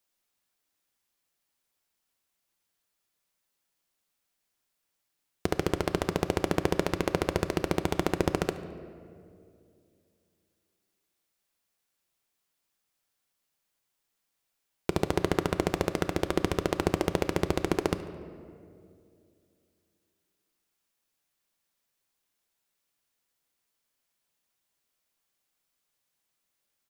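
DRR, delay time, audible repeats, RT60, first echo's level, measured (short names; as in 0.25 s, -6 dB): 9.5 dB, 72 ms, 1, 2.4 s, -20.0 dB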